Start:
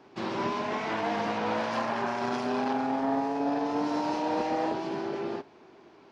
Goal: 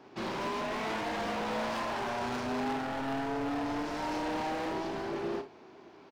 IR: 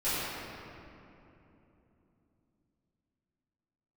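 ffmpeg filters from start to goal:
-af "volume=32.5dB,asoftclip=hard,volume=-32.5dB,aecho=1:1:32|59:0.335|0.211"

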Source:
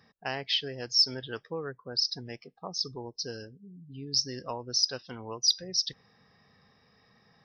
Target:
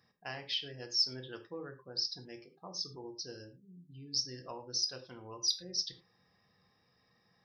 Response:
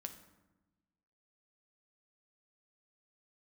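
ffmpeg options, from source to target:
-filter_complex "[0:a]highshelf=frequency=6500:gain=7[link_01];[1:a]atrim=start_sample=2205,afade=type=out:start_time=0.26:duration=0.01,atrim=end_sample=11907,asetrate=79380,aresample=44100[link_02];[link_01][link_02]afir=irnorm=-1:irlink=0"

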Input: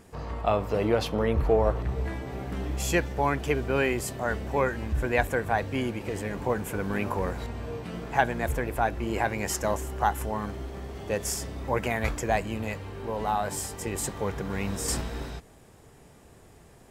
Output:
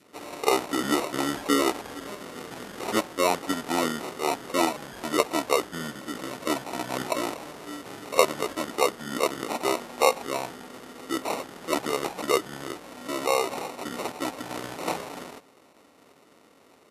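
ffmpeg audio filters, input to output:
ffmpeg -i in.wav -af "acrusher=samples=17:mix=1:aa=0.000001,adynamicequalizer=threshold=0.00794:dfrequency=1300:dqfactor=2.4:tfrequency=1300:tqfactor=2.4:attack=5:release=100:ratio=0.375:range=2:mode=boostabove:tftype=bell,asetrate=27781,aresample=44100,atempo=1.5874,highpass=350,volume=3.5dB" out.wav

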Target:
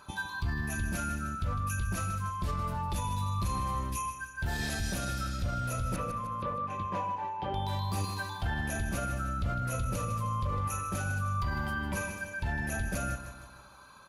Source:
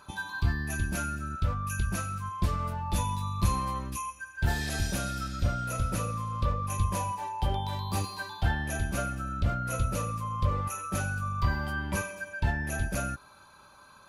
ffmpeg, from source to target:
ffmpeg -i in.wav -filter_complex "[0:a]asettb=1/sr,asplit=3[link_01][link_02][link_03];[link_01]atrim=end=5.964[link_04];[link_02]atrim=start=5.96:end=7.54,asetpts=PTS-STARTPTS,afade=type=in:duration=0.004:curve=qsin,afade=type=out:start_time=1.576:duration=0.004:curve=qsin,highpass=200,lowpass=2300[link_05];[link_03]atrim=start=7.536[link_06];[link_04][link_05]acrossfade=duration=0.004:curve1=hsin:curve2=qsin[link_07];[link_07][link_06]acrossfade=duration=0.004:curve1=qsin:curve2=hsin,aecho=1:1:154|308|462|616|770:0.251|0.128|0.0653|0.0333|0.017,alimiter=limit=-24dB:level=0:latency=1:release=32" out.wav

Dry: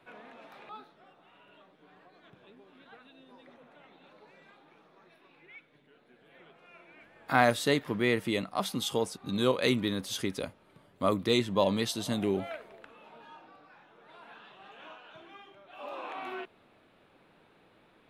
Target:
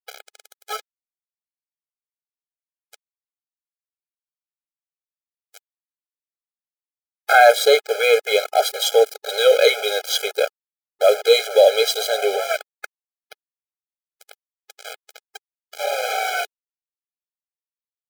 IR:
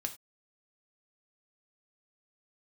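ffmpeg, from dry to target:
-filter_complex "[0:a]adynamicequalizer=threshold=0.00178:dfrequency=10000:dqfactor=0.88:tfrequency=10000:tqfactor=0.88:attack=5:release=100:ratio=0.375:range=3.5:mode=cutabove:tftype=bell,asplit=2[link_01][link_02];[link_02]acompressor=threshold=-41dB:ratio=10,volume=1dB[link_03];[link_01][link_03]amix=inputs=2:normalize=0,apsyclip=18.5dB,aeval=exprs='val(0)*gte(abs(val(0)),0.15)':channel_layout=same,afftfilt=real='re*eq(mod(floor(b*sr/1024/420),2),1)':imag='im*eq(mod(floor(b*sr/1024/420),2),1)':win_size=1024:overlap=0.75,volume=-2dB"

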